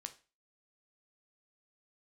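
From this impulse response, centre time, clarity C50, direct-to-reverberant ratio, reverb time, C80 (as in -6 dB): 6 ms, 15.0 dB, 6.5 dB, 0.35 s, 21.0 dB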